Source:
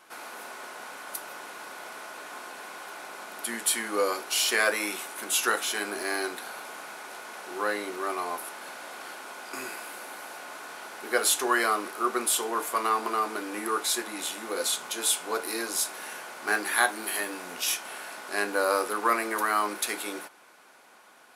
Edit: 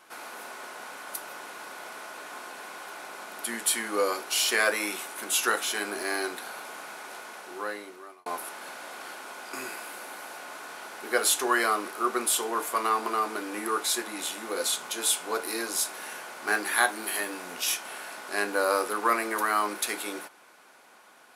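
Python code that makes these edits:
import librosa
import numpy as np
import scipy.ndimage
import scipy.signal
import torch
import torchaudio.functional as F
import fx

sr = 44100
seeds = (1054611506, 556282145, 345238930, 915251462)

y = fx.edit(x, sr, fx.fade_out_span(start_s=7.17, length_s=1.09), tone=tone)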